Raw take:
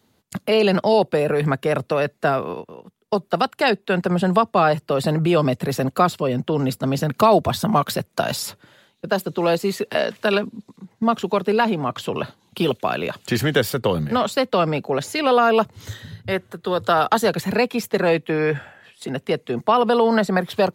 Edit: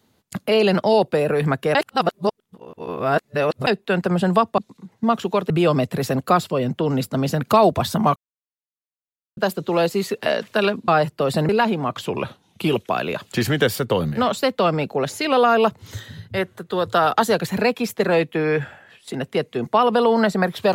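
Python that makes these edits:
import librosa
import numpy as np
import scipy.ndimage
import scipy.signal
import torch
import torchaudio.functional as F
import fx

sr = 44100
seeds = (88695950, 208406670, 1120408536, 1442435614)

y = fx.edit(x, sr, fx.reverse_span(start_s=1.75, length_s=1.92),
    fx.swap(start_s=4.58, length_s=0.61, other_s=10.57, other_length_s=0.92),
    fx.silence(start_s=7.85, length_s=1.21),
    fx.speed_span(start_s=12.06, length_s=0.78, speed=0.93), tone=tone)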